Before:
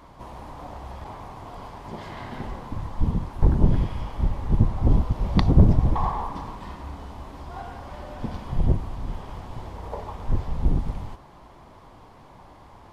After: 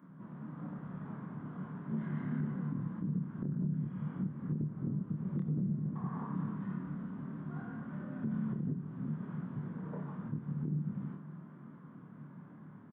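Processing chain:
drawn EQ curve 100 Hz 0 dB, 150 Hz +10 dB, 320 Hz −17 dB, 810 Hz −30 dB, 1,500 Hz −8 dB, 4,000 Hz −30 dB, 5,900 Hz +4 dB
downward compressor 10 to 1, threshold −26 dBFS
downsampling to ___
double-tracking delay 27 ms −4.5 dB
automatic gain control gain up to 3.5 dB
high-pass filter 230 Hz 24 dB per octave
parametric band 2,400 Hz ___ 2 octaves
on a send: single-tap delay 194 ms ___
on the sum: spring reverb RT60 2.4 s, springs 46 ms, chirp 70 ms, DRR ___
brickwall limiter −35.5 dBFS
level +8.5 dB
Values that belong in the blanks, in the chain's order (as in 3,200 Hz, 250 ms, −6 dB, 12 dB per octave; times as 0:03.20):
8,000 Hz, −13.5 dB, −23 dB, 13.5 dB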